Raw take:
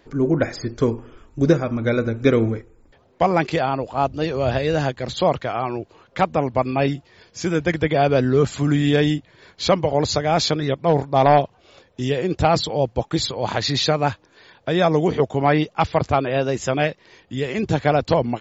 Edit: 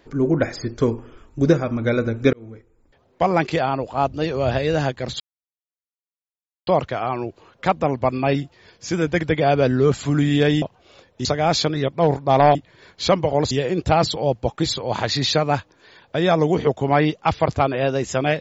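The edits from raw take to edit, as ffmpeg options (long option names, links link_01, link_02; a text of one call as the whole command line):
ffmpeg -i in.wav -filter_complex "[0:a]asplit=7[link_01][link_02][link_03][link_04][link_05][link_06][link_07];[link_01]atrim=end=2.33,asetpts=PTS-STARTPTS,afade=type=out:start_time=2.326:duration=0.004:curve=hsin[link_08];[link_02]atrim=start=2.33:end=5.2,asetpts=PTS-STARTPTS,afade=type=in:duration=1.03,afade=type=out:start_time=2.866:duration=0.004:curve=hsin,apad=pad_dur=1.47[link_09];[link_03]atrim=start=5.2:end=9.152,asetpts=PTS-STARTPTS,afade=type=in:duration=0.004:curve=hsin[link_10];[link_04]atrim=start=11.408:end=12.042[link_11];[link_05]atrim=start=10.108:end=11.412[link_12];[link_06]atrim=start=9.148:end=10.112[link_13];[link_07]atrim=start=12.038[link_14];[link_08][link_09][link_10]concat=n=3:v=0:a=1[link_15];[link_15][link_11]acrossfade=duration=0.004:curve1=hsin:curve2=hsin[link_16];[link_16][link_12]acrossfade=duration=0.004:curve1=hsin:curve2=hsin[link_17];[link_17][link_13]acrossfade=duration=0.004:curve1=hsin:curve2=hsin[link_18];[link_18][link_14]acrossfade=duration=0.004:curve1=hsin:curve2=hsin" out.wav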